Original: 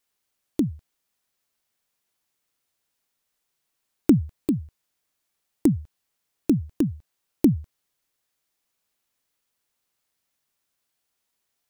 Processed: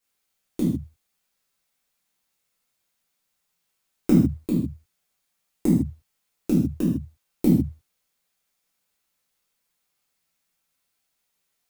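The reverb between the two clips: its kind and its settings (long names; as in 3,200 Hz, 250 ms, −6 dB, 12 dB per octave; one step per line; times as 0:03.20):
reverb whose tail is shaped and stops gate 180 ms falling, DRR −7.5 dB
level −6 dB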